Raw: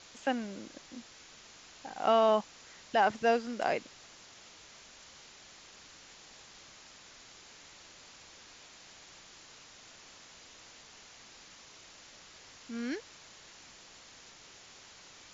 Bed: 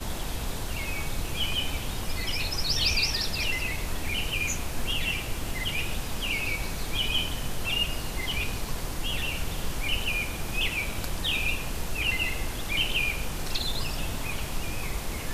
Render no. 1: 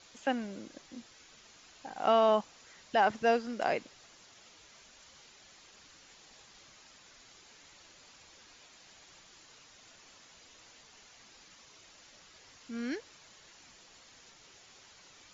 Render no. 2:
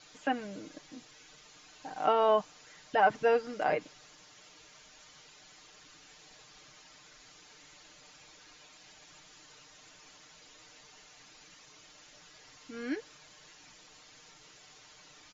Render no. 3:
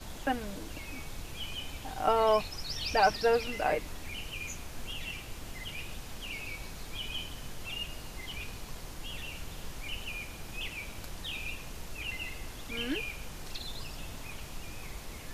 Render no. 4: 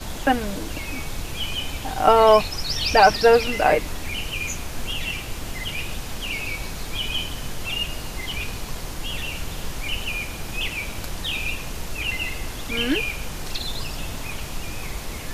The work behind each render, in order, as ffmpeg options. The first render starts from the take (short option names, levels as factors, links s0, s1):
-af "afftdn=nr=6:nf=-55"
-filter_complex "[0:a]acrossover=split=2800[s0][s1];[s1]acompressor=threshold=0.002:ratio=4:attack=1:release=60[s2];[s0][s2]amix=inputs=2:normalize=0,aecho=1:1:6.6:0.66"
-filter_complex "[1:a]volume=0.282[s0];[0:a][s0]amix=inputs=2:normalize=0"
-af "volume=3.76,alimiter=limit=0.794:level=0:latency=1"